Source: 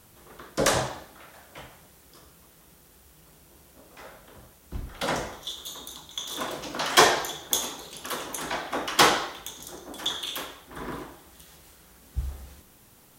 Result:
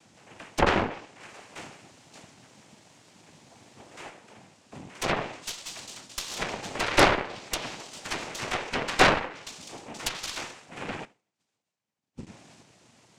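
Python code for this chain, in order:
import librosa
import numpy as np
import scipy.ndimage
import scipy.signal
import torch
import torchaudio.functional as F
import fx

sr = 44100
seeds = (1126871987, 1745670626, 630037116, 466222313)

y = fx.noise_vocoder(x, sr, seeds[0], bands=4)
y = fx.leveller(y, sr, passes=1, at=(1.23, 4.1))
y = fx.env_lowpass_down(y, sr, base_hz=1800.0, full_db=-23.0)
y = fx.cheby_harmonics(y, sr, harmonics=(6, 8), levels_db=(-13, -8), full_scale_db=-4.5)
y = fx.upward_expand(y, sr, threshold_db=-57.0, expansion=2.5, at=(11.05, 12.27))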